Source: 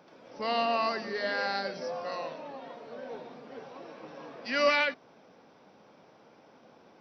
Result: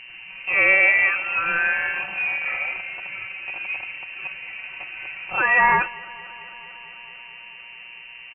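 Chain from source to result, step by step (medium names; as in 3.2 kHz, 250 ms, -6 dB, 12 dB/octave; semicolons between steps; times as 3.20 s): rattle on loud lows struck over -49 dBFS, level -36 dBFS; comb 4.3 ms, depth 85%; tape speed -16%; mains buzz 120 Hz, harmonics 9, -50 dBFS -6 dB/octave; on a send: thinning echo 223 ms, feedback 81%, high-pass 420 Hz, level -22 dB; on the sum: frequency inversion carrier 2.9 kHz; trim +7 dB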